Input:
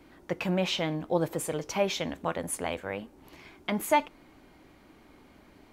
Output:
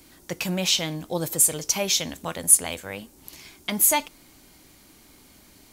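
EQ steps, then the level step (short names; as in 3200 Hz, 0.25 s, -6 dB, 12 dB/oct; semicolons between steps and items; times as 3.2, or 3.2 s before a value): tone controls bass +5 dB, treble +14 dB; high shelf 2400 Hz +9 dB; -2.5 dB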